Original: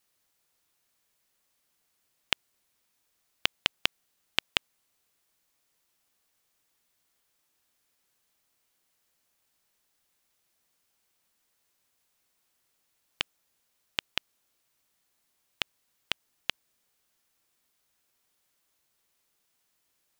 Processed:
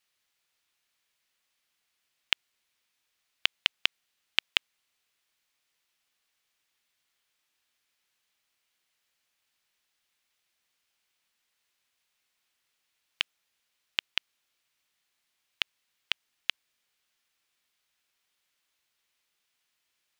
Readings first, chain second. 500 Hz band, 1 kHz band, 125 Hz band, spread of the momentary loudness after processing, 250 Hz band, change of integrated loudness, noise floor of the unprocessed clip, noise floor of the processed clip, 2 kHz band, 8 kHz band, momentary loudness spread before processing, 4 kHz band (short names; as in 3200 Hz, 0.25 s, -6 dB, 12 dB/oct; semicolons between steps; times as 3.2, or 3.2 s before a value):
-6.5 dB, -3.0 dB, n/a, 7 LU, -8.0 dB, +2.0 dB, -76 dBFS, -80 dBFS, +2.0 dB, -3.5 dB, 7 LU, +2.0 dB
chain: bell 2700 Hz +11 dB 2.5 oct; gain -8.5 dB